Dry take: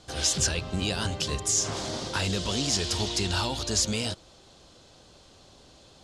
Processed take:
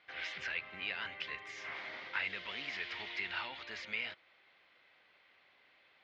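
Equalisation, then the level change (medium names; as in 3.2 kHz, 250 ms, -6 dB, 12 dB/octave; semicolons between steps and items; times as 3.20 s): band-pass filter 2.1 kHz, Q 5.9; distance through air 300 m; +9.5 dB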